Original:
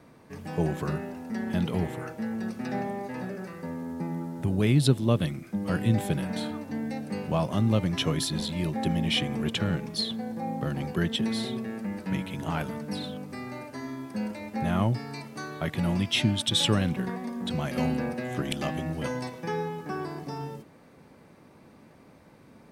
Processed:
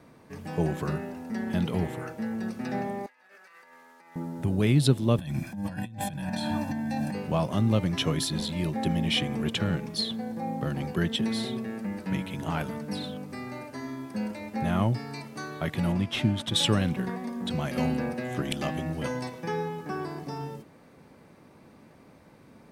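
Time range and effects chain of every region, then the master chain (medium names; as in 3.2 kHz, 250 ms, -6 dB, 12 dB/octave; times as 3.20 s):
3.06–4.16 s: high-pass 1.5 kHz + treble shelf 4.2 kHz -10 dB + compressor with a negative ratio -54 dBFS, ratio -0.5
5.18–7.15 s: comb 1.2 ms, depth 95% + compressor with a negative ratio -33 dBFS
15.92–16.56 s: CVSD coder 64 kbps + treble shelf 3.3 kHz -11.5 dB
whole clip: none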